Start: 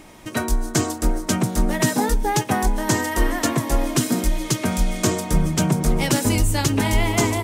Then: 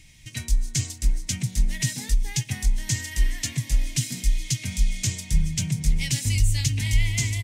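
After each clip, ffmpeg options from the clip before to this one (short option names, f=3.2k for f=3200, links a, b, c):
-af "firequalizer=gain_entry='entry(130,0);entry(180,-12);entry(360,-26);entry(1300,-27);entry(2000,-4);entry(6300,-1);entry(13000,-10)':delay=0.05:min_phase=1"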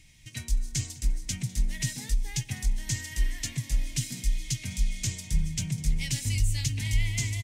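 -af "aecho=1:1:202:0.0944,volume=-5dB"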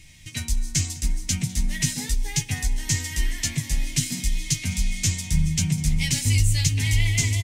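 -filter_complex "[0:a]asplit=2[a][b];[b]adelay=12,volume=-4dB[c];[a][c]amix=inputs=2:normalize=0,volume=6.5dB"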